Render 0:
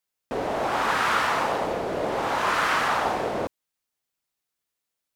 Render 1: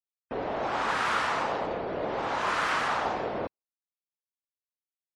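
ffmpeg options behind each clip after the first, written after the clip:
-af "afftdn=nr=31:nf=-48,volume=-4.5dB"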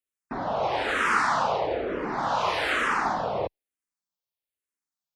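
-filter_complex "[0:a]asplit=2[a][b];[b]afreqshift=-1.1[c];[a][c]amix=inputs=2:normalize=1,volume=6dB"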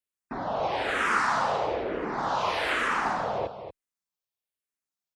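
-af "aecho=1:1:234:0.316,volume=-2dB"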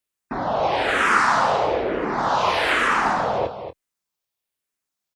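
-filter_complex "[0:a]asplit=2[a][b];[b]adelay=24,volume=-13dB[c];[a][c]amix=inputs=2:normalize=0,volume=7dB"

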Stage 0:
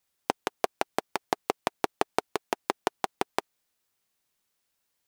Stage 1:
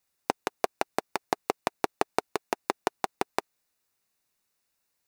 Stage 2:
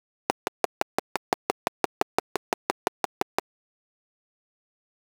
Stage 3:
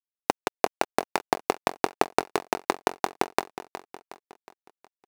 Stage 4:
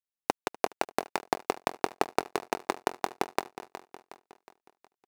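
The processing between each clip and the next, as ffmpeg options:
-af "bandreject=f=3.2k:w=7.9"
-af "aeval=exprs='val(0)*gte(abs(val(0)),0.00944)':c=same"
-af "aecho=1:1:365|730|1095|1460|1825:0.224|0.107|0.0516|0.0248|0.0119,volume=4dB"
-af "aecho=1:1:246:0.0794,volume=-4.5dB"

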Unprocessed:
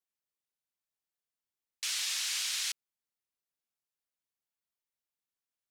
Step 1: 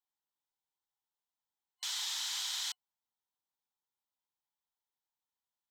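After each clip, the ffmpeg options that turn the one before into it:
-af "superequalizer=9b=3.55:10b=1.41:12b=0.562:13b=1.58:16b=0.501,volume=-4.5dB"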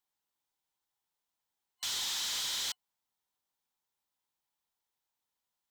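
-af "asoftclip=type=hard:threshold=-37dB,volume=5dB"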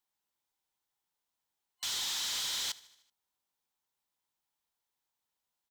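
-af "aecho=1:1:76|152|228|304|380:0.0891|0.0526|0.031|0.0183|0.0108"

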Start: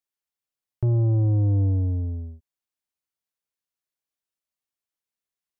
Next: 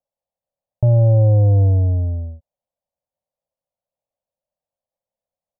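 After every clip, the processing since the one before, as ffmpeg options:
-af "firequalizer=gain_entry='entry(180,0);entry(380,-14);entry(540,12);entry(1400,-19)':delay=0.05:min_phase=1,volume=7.5dB"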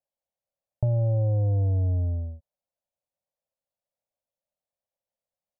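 -af "acompressor=threshold=-16dB:ratio=6,volume=-5dB"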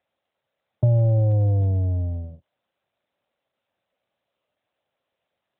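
-af "volume=6.5dB" -ar 8000 -c:a libopencore_amrnb -b:a 12200

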